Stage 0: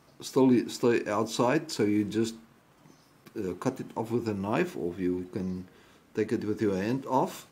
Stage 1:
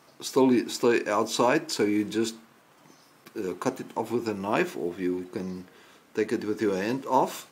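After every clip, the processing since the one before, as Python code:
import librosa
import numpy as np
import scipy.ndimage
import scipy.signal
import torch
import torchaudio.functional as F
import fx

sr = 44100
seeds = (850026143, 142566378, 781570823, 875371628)

y = fx.highpass(x, sr, hz=370.0, slope=6)
y = y * librosa.db_to_amplitude(5.0)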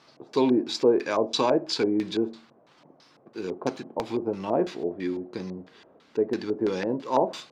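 y = fx.filter_lfo_lowpass(x, sr, shape='square', hz=3.0, low_hz=620.0, high_hz=4300.0, q=2.1)
y = fx.high_shelf(y, sr, hz=9600.0, db=6.0)
y = y * librosa.db_to_amplitude(-1.5)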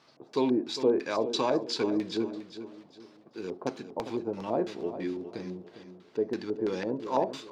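y = fx.echo_feedback(x, sr, ms=404, feedback_pct=34, wet_db=-11.5)
y = y * librosa.db_to_amplitude(-4.5)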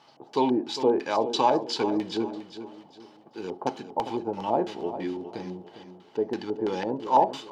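y = fx.small_body(x, sr, hz=(840.0, 3000.0), ring_ms=25, db=13)
y = y * librosa.db_to_amplitude(1.5)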